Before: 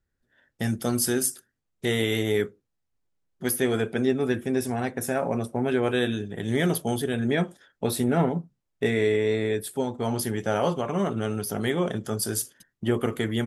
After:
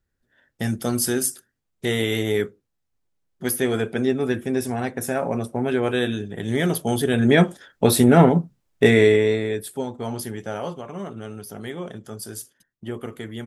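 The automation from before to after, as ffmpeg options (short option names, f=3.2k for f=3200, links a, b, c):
-af "volume=9.5dB,afade=t=in:st=6.78:d=0.64:silence=0.421697,afade=t=out:st=8.93:d=0.5:silence=0.375837,afade=t=out:st=9.43:d=1.39:silence=0.398107"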